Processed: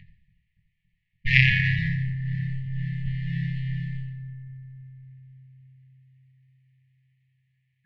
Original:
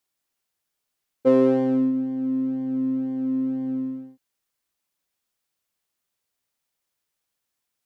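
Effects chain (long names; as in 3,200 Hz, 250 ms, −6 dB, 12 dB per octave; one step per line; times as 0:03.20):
0:01.49–0:03.05: downward expander −21 dBFS
low-pass that shuts in the quiet parts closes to 1,600 Hz, open at −18.5 dBFS
dynamic equaliser 180 Hz, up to +5 dB, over −37 dBFS, Q 2.9
in parallel at −2.5 dB: brickwall limiter −18 dBFS, peak gain reduction 11 dB
on the sum: floating-point word with a short mantissa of 6 bits
steady tone 620 Hz −28 dBFS
high-frequency loss of the air 180 metres
delay with a low-pass on its return 283 ms, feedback 71%, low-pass 700 Hz, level −12.5 dB
convolution reverb RT60 0.85 s, pre-delay 3 ms, DRR −4.5 dB
harmonic generator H 4 −8 dB, 6 −8 dB, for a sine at 8 dBFS
linear-phase brick-wall band-stop 190–1,700 Hz
level −3.5 dB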